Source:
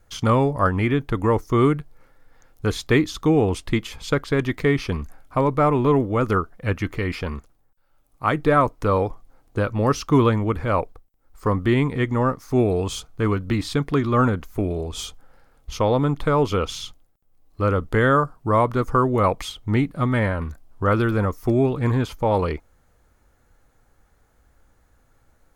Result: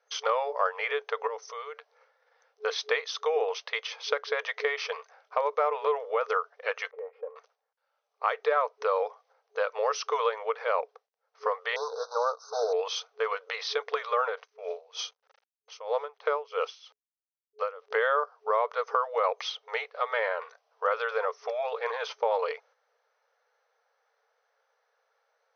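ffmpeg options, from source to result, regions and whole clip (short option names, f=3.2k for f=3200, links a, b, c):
-filter_complex "[0:a]asettb=1/sr,asplit=3[a][b][c];[a]atrim=end=1.274[d];[b]atrim=start=1.27:end=1.78,asetpts=PTS-STARTPTS,afade=t=in:d=0.004:c=qsin,afade=t=out:st=0.506:d=0.004:c=qsin,highshelf=f=4.4k:g=11,acompressor=threshold=-28dB:ratio=16:attack=3.2:release=140:knee=1:detection=peak[e];[c]atrim=start=1.776[f];[d][e]acrossfade=d=0.004:c1=hsin:c2=qsin[g];[g][f]acrossfade=d=0.004:c1=qsin:c2=hsin,asettb=1/sr,asplit=3[h][i][j];[h]atrim=end=6.914[k];[i]atrim=start=6.91:end=7.36,asetpts=PTS-STARTPTS,afade=t=in:d=0.004:c=qsin,afade=t=out:st=0.446:d=0.004:c=qsin,lowpass=f=310:t=q:w=2.6,aecho=1:1:3.7:0.67,atrim=end_sample=19845,acompressor=threshold=-19dB:ratio=6:attack=3.2:release=140:knee=1:detection=peak[l];[j]atrim=start=7.356[m];[k][l]acrossfade=d=0.004:c1=hsin:c2=qsin[n];[n][m]acrossfade=d=0.004:c1=qsin:c2=hsin,asettb=1/sr,asplit=3[o][p][q];[o]atrim=end=11.764[r];[p]atrim=start=11.76:end=12.73,asetpts=PTS-STARTPTS,afade=t=in:d=0.004:c=qsin,afade=t=out:st=0.966:d=0.004:c=qsin,acrusher=bits=4:mode=log:mix=0:aa=0.000001,asuperstop=centerf=2400:order=20:qfactor=1.1[s];[q]atrim=start=12.726[t];[r][s]acrossfade=d=0.004:c1=hsin:c2=qsin[u];[u][t]acrossfade=d=0.004:c1=qsin:c2=hsin,asettb=1/sr,asplit=3[v][w][x];[v]atrim=end=14.374[y];[w]atrim=start=14.37:end=17.95,asetpts=PTS-STARTPTS,afade=t=in:d=0.004:c=qsin,afade=t=out:st=3.576:d=0.004:c=qsin,bandreject=f=3.6k:w=16,aeval=exprs='val(0)*gte(abs(val(0)),0.00531)':c=same,aeval=exprs='val(0)*pow(10,-21*(0.5-0.5*cos(2*PI*3.1*n/s))/20)':c=same[z];[x]atrim=start=17.946[aa];[y][z]acrossfade=d=0.004:c1=hsin:c2=qsin[ab];[ab][aa]acrossfade=d=0.004:c1=qsin:c2=hsin,agate=range=-6dB:threshold=-47dB:ratio=16:detection=peak,afftfilt=real='re*between(b*sr/4096,420,6300)':imag='im*between(b*sr/4096,420,6300)':win_size=4096:overlap=0.75,acompressor=threshold=-25dB:ratio=2.5"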